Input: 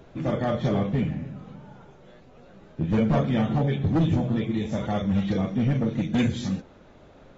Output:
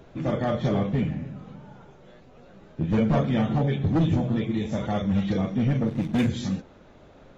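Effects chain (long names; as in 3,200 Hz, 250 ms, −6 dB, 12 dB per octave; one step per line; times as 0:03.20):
0:05.87–0:06.28: slack as between gear wheels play −33 dBFS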